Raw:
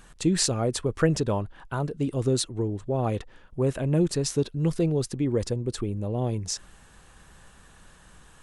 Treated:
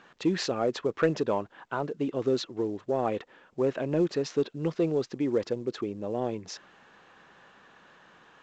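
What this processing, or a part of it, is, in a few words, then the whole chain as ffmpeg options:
telephone: -af "highpass=280,lowpass=3.1k,asoftclip=type=tanh:threshold=-14.5dB,volume=1.5dB" -ar 16000 -c:a pcm_mulaw

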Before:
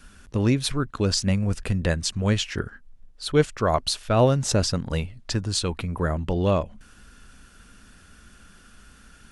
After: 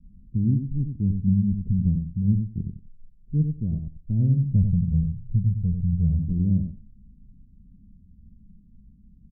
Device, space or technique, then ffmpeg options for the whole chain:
the neighbour's flat through the wall: -filter_complex "[0:a]asettb=1/sr,asplit=3[a][b][c];[a]atrim=end=4.554[d];[b]atrim=start=4.55:end=6.19,asetpts=PTS-STARTPTS,afade=t=in:d=0.004:c=qsin,afade=t=out:st=1.636:d=0.004:c=qsin,aecho=1:1:1.7:1,atrim=end_sample=72324[e];[c]atrim=start=6.186[f];[d][e]acrossfade=d=0.004:c1=hsin:c2=qsin[g];[g][f]acrossfade=d=0.004:c1=qsin:c2=hsin,lowpass=f=210:w=0.5412,lowpass=f=210:w=1.3066,equalizer=f=180:t=o:w=0.75:g=5,asplit=2[h][i];[i]adelay=92,lowpass=f=2k:p=1,volume=-6dB,asplit=2[j][k];[k]adelay=92,lowpass=f=2k:p=1,volume=0.16,asplit=2[l][m];[m]adelay=92,lowpass=f=2k:p=1,volume=0.16[n];[h][j][l][n]amix=inputs=4:normalize=0"

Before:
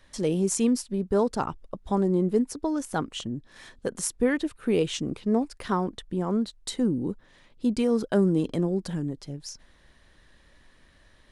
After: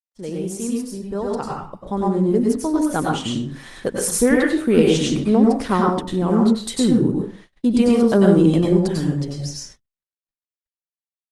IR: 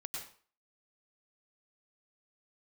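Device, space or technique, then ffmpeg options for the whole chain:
speakerphone in a meeting room: -filter_complex "[1:a]atrim=start_sample=2205[a];[0:a][a]afir=irnorm=-1:irlink=0,dynaudnorm=f=660:g=7:m=15.5dB,agate=range=-53dB:threshold=-41dB:ratio=16:detection=peak" -ar 48000 -c:a libopus -b:a 24k

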